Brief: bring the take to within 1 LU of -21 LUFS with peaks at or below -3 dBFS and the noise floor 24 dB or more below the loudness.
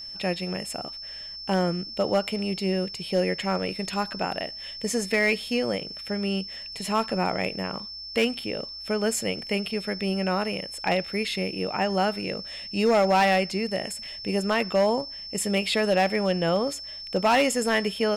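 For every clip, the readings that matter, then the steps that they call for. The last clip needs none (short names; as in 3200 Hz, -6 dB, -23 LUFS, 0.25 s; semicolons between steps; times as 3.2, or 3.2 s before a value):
clipped 0.7%; flat tops at -15.0 dBFS; steady tone 5300 Hz; tone level -36 dBFS; loudness -26.5 LUFS; peak -15.0 dBFS; loudness target -21.0 LUFS
-> clip repair -15 dBFS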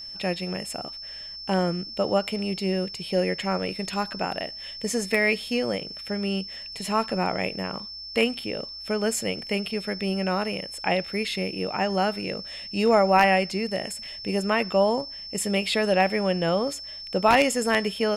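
clipped 0.0%; steady tone 5300 Hz; tone level -36 dBFS
-> notch 5300 Hz, Q 30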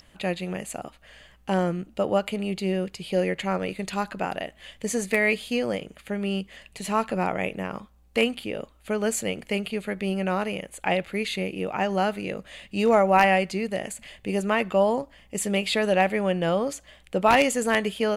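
steady tone none; loudness -26.0 LUFS; peak -5.5 dBFS; loudness target -21.0 LUFS
-> gain +5 dB; limiter -3 dBFS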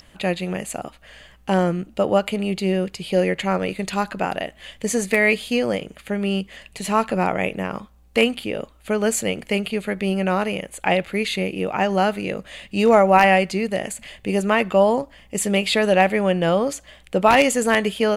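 loudness -21.0 LUFS; peak -3.0 dBFS; noise floor -52 dBFS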